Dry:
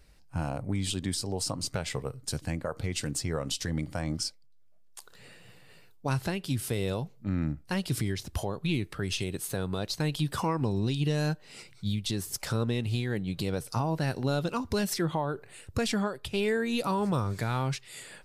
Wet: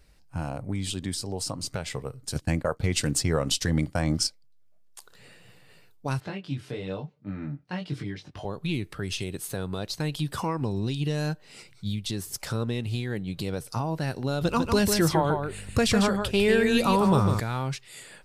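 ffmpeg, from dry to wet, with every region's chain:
ffmpeg -i in.wav -filter_complex "[0:a]asettb=1/sr,asplit=3[link_01][link_02][link_03];[link_01]atrim=end=2.354[link_04];[link_02]atrim=start=2.35:end=4.27,asetpts=PTS-STARTPTS,afade=type=in:duration=0.004:curve=qsin,afade=type=out:start_time=1.916:duration=0.004:curve=qsin,agate=range=-33dB:threshold=-35dB:ratio=3:release=100:detection=peak,acontrast=76[link_05];[link_03]atrim=start=4.266[link_06];[link_04][link_05]acrossfade=duration=0.004:curve1=hsin:curve2=qsin[link_07];[link_07][link_06]acrossfade=duration=0.004:curve1=qsin:curve2=hsin,asettb=1/sr,asplit=3[link_08][link_09][link_10];[link_08]atrim=end=6.204[link_11];[link_09]atrim=start=6.2:end=8.45,asetpts=PTS-STARTPTS,afade=type=in:duration=0.004:curve=qsin,afade=type=out:start_time=2.246:duration=0.004:curve=qsin,highpass=110,lowpass=3600,aecho=1:1:6.7:0.41,atrim=end_sample=99225,flanger=delay=19.5:depth=2.9:speed=1[link_12];[link_10]atrim=start=8.446[link_13];[link_11][link_12]acrossfade=duration=0.004:curve1=hsin:curve2=qsin[link_14];[link_14][link_13]acrossfade=duration=0.004:curve1=qsin:curve2=hsin,asettb=1/sr,asplit=3[link_15][link_16][link_17];[link_15]atrim=end=14.414[link_18];[link_16]atrim=start=14.41:end=17.4,asetpts=PTS-STARTPTS,afade=type=in:duration=0.004:curve=qsin,afade=type=out:start_time=2.986:duration=0.004:curve=qsin,acontrast=52,aeval=exprs='val(0)+0.01*(sin(2*PI*50*n/s)+sin(2*PI*2*50*n/s)/2+sin(2*PI*3*50*n/s)/3+sin(2*PI*4*50*n/s)/4+sin(2*PI*5*50*n/s)/5)':channel_layout=same,aecho=1:1:150:0.531,atrim=end_sample=131859[link_19];[link_17]atrim=start=17.396[link_20];[link_18][link_19]acrossfade=duration=0.004:curve1=hsin:curve2=qsin[link_21];[link_21][link_20]acrossfade=duration=0.004:curve1=qsin:curve2=hsin" out.wav

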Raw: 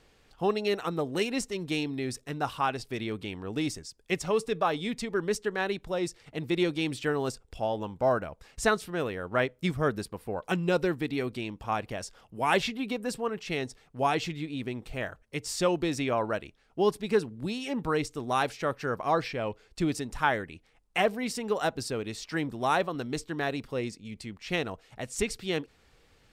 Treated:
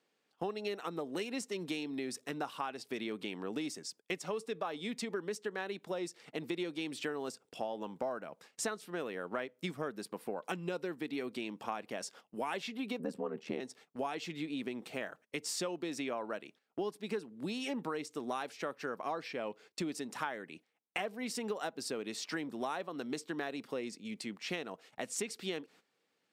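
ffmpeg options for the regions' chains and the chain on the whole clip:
ffmpeg -i in.wav -filter_complex "[0:a]asettb=1/sr,asplit=3[link_01][link_02][link_03];[link_01]atrim=end=12.994[link_04];[link_02]atrim=start=12.99:end=13.6,asetpts=PTS-STARTPTS,afade=type=in:duration=0.004:curve=qsin,afade=type=out:start_time=0.606:duration=0.004:curve=qsin,tiltshelf=frequency=1300:gain=8,aeval=exprs='val(0)*sin(2*PI*39*n/s)':channel_layout=same[link_05];[link_03]atrim=start=13.596[link_06];[link_04][link_05]acrossfade=duration=0.004:curve1=hsin:curve2=qsin[link_07];[link_07][link_06]acrossfade=duration=0.004:curve1=qsin:curve2=hsin,highpass=frequency=190:width=0.5412,highpass=frequency=190:width=1.3066,agate=range=-16dB:threshold=-53dB:ratio=16:detection=peak,acompressor=threshold=-36dB:ratio=6,volume=1dB" out.wav

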